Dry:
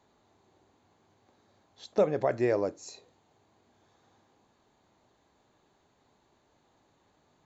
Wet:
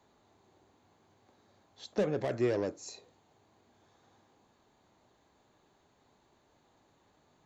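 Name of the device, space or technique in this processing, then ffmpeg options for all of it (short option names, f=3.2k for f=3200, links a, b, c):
one-band saturation: -filter_complex "[0:a]acrossover=split=410|2600[a][b][c];[b]asoftclip=type=tanh:threshold=-35dB[d];[a][d][c]amix=inputs=3:normalize=0"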